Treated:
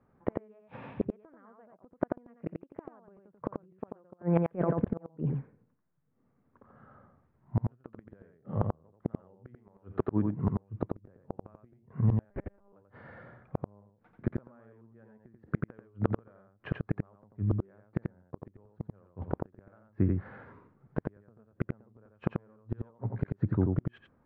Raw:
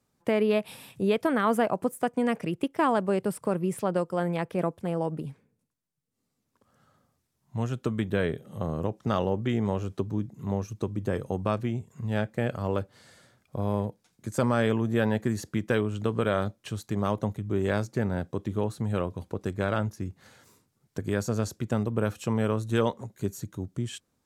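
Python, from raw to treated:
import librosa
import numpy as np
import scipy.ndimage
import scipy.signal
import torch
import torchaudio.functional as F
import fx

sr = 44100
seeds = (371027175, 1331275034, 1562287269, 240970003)

y = scipy.signal.sosfilt(scipy.signal.butter(4, 1700.0, 'lowpass', fs=sr, output='sos'), x)
y = fx.over_compress(y, sr, threshold_db=-31.0, ratio=-0.5, at=(4.11, 4.98))
y = fx.low_shelf(y, sr, hz=360.0, db=-7.5, at=(9.54, 10.37))
y = fx.gate_flip(y, sr, shuts_db=-22.0, range_db=-41)
y = y + 10.0 ** (-3.5 / 20.0) * np.pad(y, (int(88 * sr / 1000.0), 0))[:len(y)]
y = fx.lpc_monotone(y, sr, seeds[0], pitch_hz=200.0, order=10, at=(12.3, 12.73))
y = y * 10.0 ** (7.5 / 20.0)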